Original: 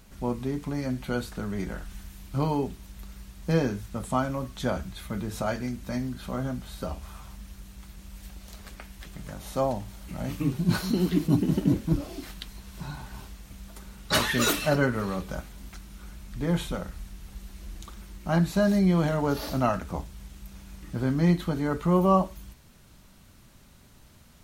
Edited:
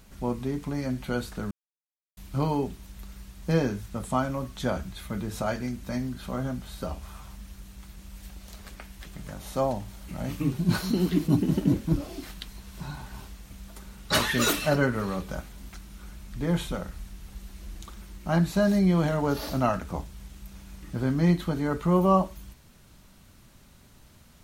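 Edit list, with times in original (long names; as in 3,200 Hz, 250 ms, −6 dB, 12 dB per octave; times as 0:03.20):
0:01.51–0:02.17: silence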